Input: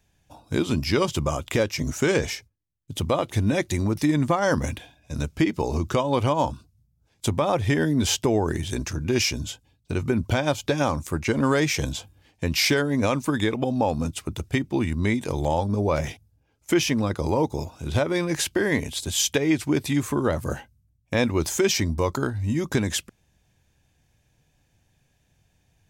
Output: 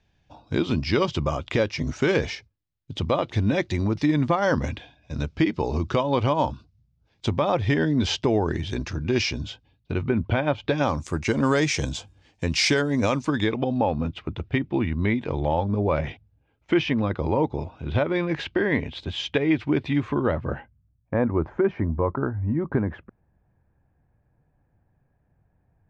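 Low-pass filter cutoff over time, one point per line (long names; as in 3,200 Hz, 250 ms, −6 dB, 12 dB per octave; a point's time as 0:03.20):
low-pass filter 24 dB per octave
0:09.36 4,900 Hz
0:10.52 2,800 Hz
0:11.10 7,600 Hz
0:13.02 7,600 Hz
0:13.91 3,300 Hz
0:20.17 3,300 Hz
0:21.17 1,500 Hz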